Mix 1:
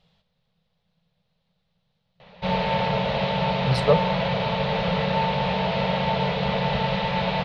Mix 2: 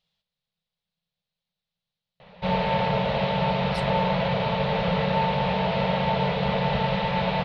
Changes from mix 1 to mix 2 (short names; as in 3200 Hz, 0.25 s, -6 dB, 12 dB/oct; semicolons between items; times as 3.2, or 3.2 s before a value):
speech: add pre-emphasis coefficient 0.9; master: add high shelf 4600 Hz -7 dB